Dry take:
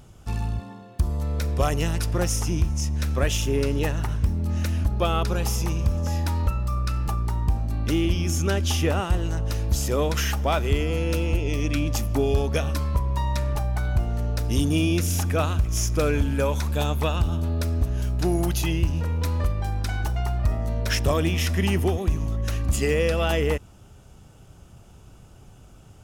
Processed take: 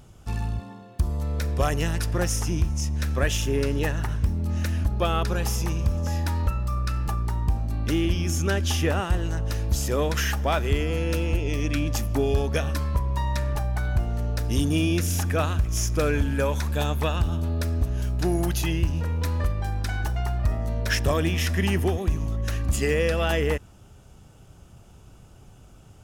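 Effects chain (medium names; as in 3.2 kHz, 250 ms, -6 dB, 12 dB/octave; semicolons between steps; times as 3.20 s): dynamic bell 1.7 kHz, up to +6 dB, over -51 dBFS, Q 4.9; trim -1 dB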